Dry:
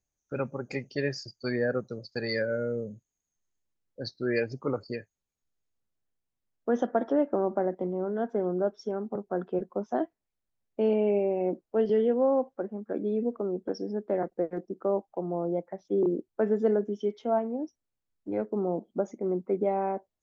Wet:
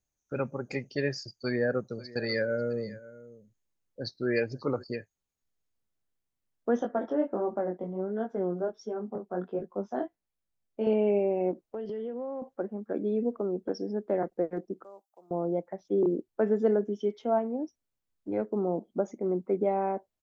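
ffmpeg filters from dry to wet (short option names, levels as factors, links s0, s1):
-filter_complex "[0:a]asplit=3[s0][s1][s2];[s0]afade=t=out:st=1.91:d=0.02[s3];[s1]aecho=1:1:542:0.119,afade=t=in:st=1.91:d=0.02,afade=t=out:st=4.82:d=0.02[s4];[s2]afade=t=in:st=4.82:d=0.02[s5];[s3][s4][s5]amix=inputs=3:normalize=0,asettb=1/sr,asplit=3[s6][s7][s8];[s6]atrim=end=6.794[s9];[s7]atrim=start=6.79:end=10.87,asetpts=PTS-STARTPTS,afade=t=in:d=0.004:c=qsin,afade=t=out:st=4.076:d=0.004:c=qsin,flanger=delay=18:depth=5.4:speed=1.4[s10];[s8]atrim=start=10.866[s11];[s9][s10]acrossfade=d=0.004:c1=hsin:c2=qsin[s12];[s12][s11]acrossfade=d=0.004:c1=qsin:c2=hsin,asettb=1/sr,asplit=3[s13][s14][s15];[s13]atrim=end=11.514[s16];[s14]atrim=start=11.51:end=12.42,asetpts=PTS-STARTPTS,afade=t=in:d=0.004:c=qsin,afade=t=out:st=0.906:d=0.004:c=qsin,acompressor=threshold=0.0224:ratio=6:attack=3.2:release=140:knee=1:detection=peak[s17];[s15]atrim=start=12.416[s18];[s16][s17]acrossfade=d=0.004:c1=hsin:c2=qsin[s19];[s19][s18]acrossfade=d=0.004:c1=qsin:c2=hsin,asettb=1/sr,asplit=3[s20][s21][s22];[s20]atrim=end=14.844[s23];[s21]atrim=start=14.84:end=15.31,asetpts=PTS-STARTPTS,afade=t=in:d=0.004:c=qsin,afade=t=out:st=0.466:d=0.004:c=qsin,aderivative[s24];[s22]atrim=start=15.306[s25];[s23][s24]acrossfade=d=0.004:c1=hsin:c2=qsin[s26];[s26][s25]acrossfade=d=0.004:c1=qsin:c2=hsin"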